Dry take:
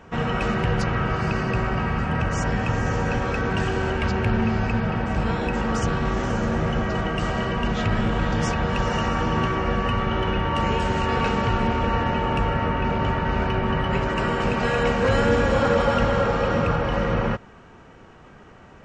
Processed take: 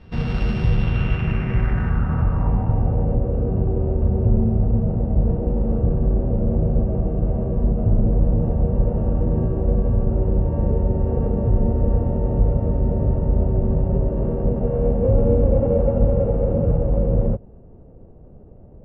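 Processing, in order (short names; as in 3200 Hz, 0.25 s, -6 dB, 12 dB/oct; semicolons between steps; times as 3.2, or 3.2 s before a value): sample sorter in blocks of 16 samples; RIAA curve playback; low-pass sweep 4200 Hz -> 570 Hz, 0.65–3.21; gain -7.5 dB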